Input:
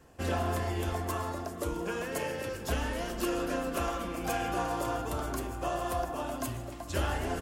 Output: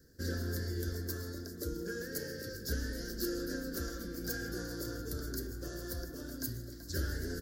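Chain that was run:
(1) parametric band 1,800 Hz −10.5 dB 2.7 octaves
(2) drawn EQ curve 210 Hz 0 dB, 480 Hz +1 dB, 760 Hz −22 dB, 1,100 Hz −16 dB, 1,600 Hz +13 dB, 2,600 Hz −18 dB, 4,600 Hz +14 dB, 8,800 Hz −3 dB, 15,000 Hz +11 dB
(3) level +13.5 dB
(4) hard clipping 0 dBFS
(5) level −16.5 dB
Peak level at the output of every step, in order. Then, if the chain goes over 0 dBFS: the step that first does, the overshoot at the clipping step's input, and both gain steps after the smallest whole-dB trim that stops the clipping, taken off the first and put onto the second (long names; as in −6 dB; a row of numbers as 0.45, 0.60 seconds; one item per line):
−20.5, −18.0, −4.5, −4.5, −21.0 dBFS
no step passes full scale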